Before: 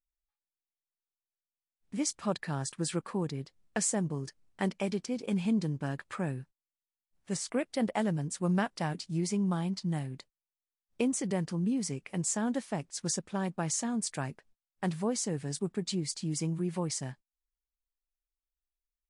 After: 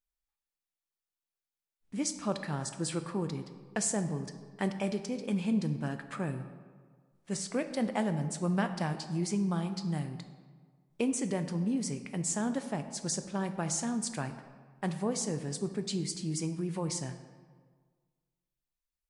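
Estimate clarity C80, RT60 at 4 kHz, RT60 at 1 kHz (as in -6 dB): 11.5 dB, 0.95 s, 1.6 s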